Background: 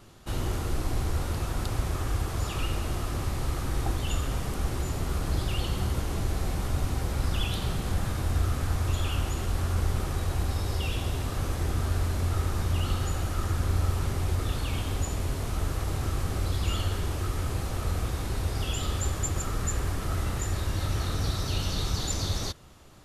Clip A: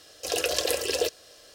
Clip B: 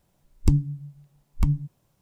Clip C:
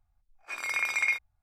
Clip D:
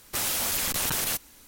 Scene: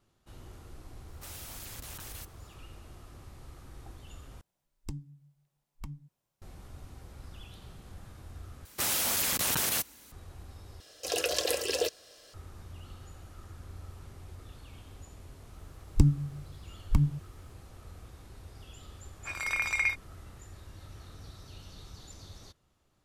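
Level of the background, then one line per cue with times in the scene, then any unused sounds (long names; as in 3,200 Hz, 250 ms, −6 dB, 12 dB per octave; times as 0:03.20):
background −19.5 dB
0:01.08: mix in D −18 dB
0:04.41: overwrite with B −11.5 dB + low-shelf EQ 430 Hz −10 dB
0:08.65: overwrite with D −1.5 dB + high-pass filter 55 Hz
0:10.80: overwrite with A −3.5 dB
0:15.52: mix in B −2.5 dB
0:18.77: mix in C −1.5 dB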